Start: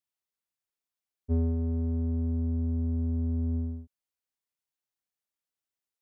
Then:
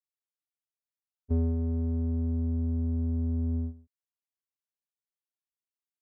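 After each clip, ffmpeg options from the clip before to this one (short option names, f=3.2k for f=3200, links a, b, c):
-af "agate=range=-12dB:threshold=-32dB:ratio=16:detection=peak"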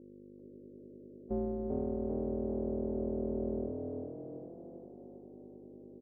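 -filter_complex "[0:a]aeval=exprs='val(0)+0.00631*(sin(2*PI*50*n/s)+sin(2*PI*2*50*n/s)/2+sin(2*PI*3*50*n/s)/3+sin(2*PI*4*50*n/s)/4+sin(2*PI*5*50*n/s)/5)':c=same,aeval=exprs='val(0)*sin(2*PI*300*n/s)':c=same,asplit=2[a][b];[b]asplit=6[c][d][e][f][g][h];[c]adelay=393,afreqshift=40,volume=-4dB[i];[d]adelay=786,afreqshift=80,volume=-10dB[j];[e]adelay=1179,afreqshift=120,volume=-16dB[k];[f]adelay=1572,afreqshift=160,volume=-22.1dB[l];[g]adelay=1965,afreqshift=200,volume=-28.1dB[m];[h]adelay=2358,afreqshift=240,volume=-34.1dB[n];[i][j][k][l][m][n]amix=inputs=6:normalize=0[o];[a][o]amix=inputs=2:normalize=0,volume=-5.5dB"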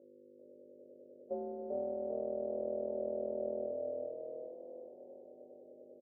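-filter_complex "[0:a]crystalizer=i=4.5:c=0,bandpass=f=570:t=q:w=6.8:csg=0,asplit=2[a][b];[b]adelay=32,volume=-4dB[c];[a][c]amix=inputs=2:normalize=0,volume=7.5dB"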